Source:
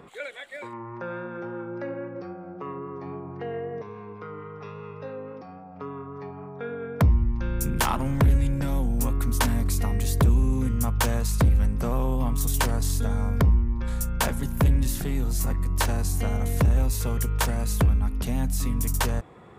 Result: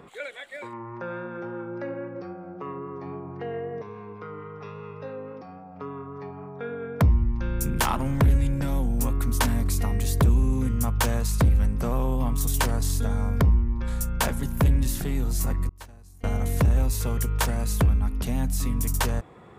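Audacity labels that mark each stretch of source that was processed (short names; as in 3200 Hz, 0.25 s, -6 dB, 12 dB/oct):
15.690000	16.240000	expander -10 dBFS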